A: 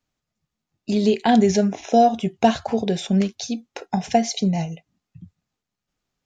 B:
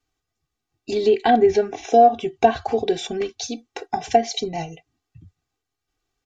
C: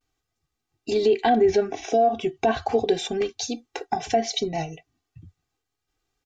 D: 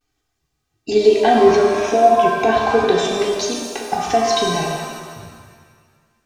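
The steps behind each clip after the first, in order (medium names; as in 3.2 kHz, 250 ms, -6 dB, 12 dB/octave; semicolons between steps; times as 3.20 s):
low-pass that closes with the level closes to 1.9 kHz, closed at -11.5 dBFS; comb 2.6 ms, depth 91%; trim -1 dB
peak limiter -11 dBFS, peak gain reduction 9 dB; vibrato 0.38 Hz 35 cents
pitch-shifted reverb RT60 1.7 s, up +7 st, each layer -8 dB, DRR -1 dB; trim +3.5 dB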